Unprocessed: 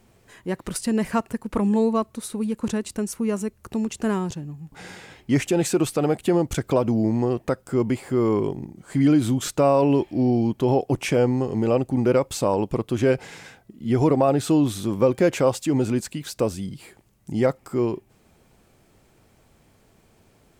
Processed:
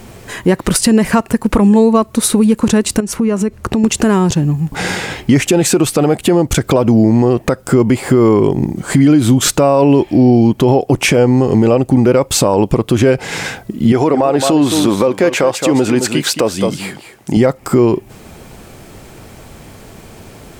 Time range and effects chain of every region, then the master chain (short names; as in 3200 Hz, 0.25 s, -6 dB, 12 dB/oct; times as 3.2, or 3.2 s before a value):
3–3.84 LPF 3600 Hz 6 dB/oct + compressor 4:1, threshold -34 dBFS
13.92–17.37 HPF 450 Hz 6 dB/oct + high shelf 6300 Hz -7 dB + echo 0.217 s -11.5 dB
whole clip: compressor 4:1, threshold -30 dBFS; maximiser +23 dB; gain -1 dB